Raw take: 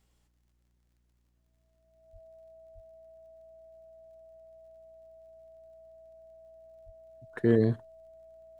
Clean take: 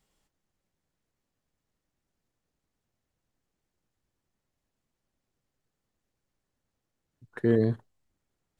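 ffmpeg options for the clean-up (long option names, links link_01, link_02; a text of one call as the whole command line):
ffmpeg -i in.wav -filter_complex "[0:a]adeclick=threshold=4,bandreject=frequency=59.6:width_type=h:width=4,bandreject=frequency=119.2:width_type=h:width=4,bandreject=frequency=178.8:width_type=h:width=4,bandreject=frequency=238.4:width_type=h:width=4,bandreject=frequency=298:width_type=h:width=4,bandreject=frequency=357.6:width_type=h:width=4,bandreject=frequency=650:width=30,asplit=3[link_01][link_02][link_03];[link_01]afade=type=out:start_time=2.12:duration=0.02[link_04];[link_02]highpass=frequency=140:width=0.5412,highpass=frequency=140:width=1.3066,afade=type=in:start_time=2.12:duration=0.02,afade=type=out:start_time=2.24:duration=0.02[link_05];[link_03]afade=type=in:start_time=2.24:duration=0.02[link_06];[link_04][link_05][link_06]amix=inputs=3:normalize=0,asplit=3[link_07][link_08][link_09];[link_07]afade=type=out:start_time=2.74:duration=0.02[link_10];[link_08]highpass=frequency=140:width=0.5412,highpass=frequency=140:width=1.3066,afade=type=in:start_time=2.74:duration=0.02,afade=type=out:start_time=2.86:duration=0.02[link_11];[link_09]afade=type=in:start_time=2.86:duration=0.02[link_12];[link_10][link_11][link_12]amix=inputs=3:normalize=0,asplit=3[link_13][link_14][link_15];[link_13]afade=type=out:start_time=6.85:duration=0.02[link_16];[link_14]highpass=frequency=140:width=0.5412,highpass=frequency=140:width=1.3066,afade=type=in:start_time=6.85:duration=0.02,afade=type=out:start_time=6.97:duration=0.02[link_17];[link_15]afade=type=in:start_time=6.97:duration=0.02[link_18];[link_16][link_17][link_18]amix=inputs=3:normalize=0" out.wav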